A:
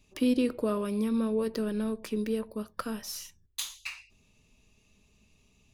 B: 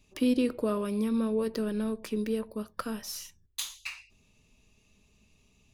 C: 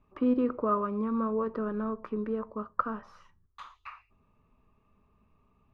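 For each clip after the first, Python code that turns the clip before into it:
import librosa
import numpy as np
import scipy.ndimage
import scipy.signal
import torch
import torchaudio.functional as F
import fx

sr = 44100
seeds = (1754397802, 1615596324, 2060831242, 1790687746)

y1 = x
y2 = fx.lowpass_res(y1, sr, hz=1200.0, q=4.9)
y2 = fx.comb_fb(y2, sr, f0_hz=83.0, decay_s=0.29, harmonics='all', damping=0.0, mix_pct=30)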